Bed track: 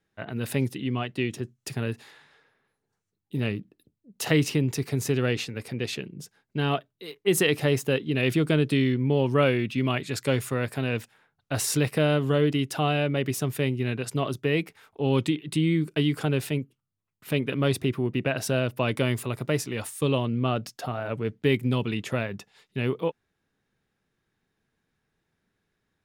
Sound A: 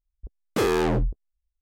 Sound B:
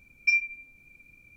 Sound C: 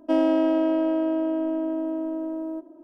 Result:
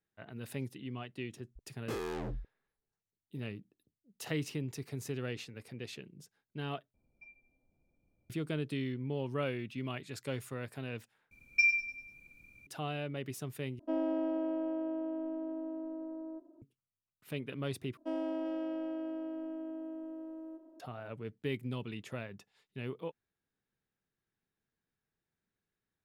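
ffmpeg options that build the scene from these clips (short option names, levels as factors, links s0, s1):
-filter_complex "[2:a]asplit=2[s0][s1];[3:a]asplit=2[s2][s3];[0:a]volume=0.211[s4];[s0]lowpass=f=710:t=q:w=2.3[s5];[s1]aecho=1:1:98|196|294|392|490:0.316|0.139|0.0612|0.0269|0.0119[s6];[s2]lowpass=f=1600:p=1[s7];[s3]aecho=1:1:390:0.266[s8];[s4]asplit=5[s9][s10][s11][s12][s13];[s9]atrim=end=6.944[s14];[s5]atrim=end=1.36,asetpts=PTS-STARTPTS,volume=0.224[s15];[s10]atrim=start=8.296:end=11.314[s16];[s6]atrim=end=1.36,asetpts=PTS-STARTPTS,volume=0.668[s17];[s11]atrim=start=12.666:end=13.794[s18];[s7]atrim=end=2.83,asetpts=PTS-STARTPTS,volume=0.251[s19];[s12]atrim=start=16.616:end=17.974[s20];[s8]atrim=end=2.83,asetpts=PTS-STARTPTS,volume=0.168[s21];[s13]atrim=start=20.796[s22];[1:a]atrim=end=1.61,asetpts=PTS-STARTPTS,volume=0.158,afade=t=in:d=0.004:c=hsin,afade=t=out:st=1.606:d=0.004:c=hsin,adelay=1320[s23];[s14][s15]acrossfade=d=0.004:c1=hsin:c2=hsin[s24];[s24][s16]acrossfade=d=0.004:c1=hsin:c2=hsin[s25];[s25][s17]acrossfade=d=0.004:c1=hsin:c2=hsin[s26];[s26][s18]acrossfade=d=0.004:c1=hsin:c2=hsin[s27];[s27][s19]acrossfade=d=0.004:c1=hsin:c2=hsin[s28];[s28][s20]acrossfade=d=0.004:c1=hsin:c2=hsin[s29];[s29][s21]acrossfade=d=0.004:c1=hsin:c2=hsin[s30];[s30][s22]acrossfade=d=0.004:c1=hsin:c2=hsin[s31];[s31][s23]amix=inputs=2:normalize=0"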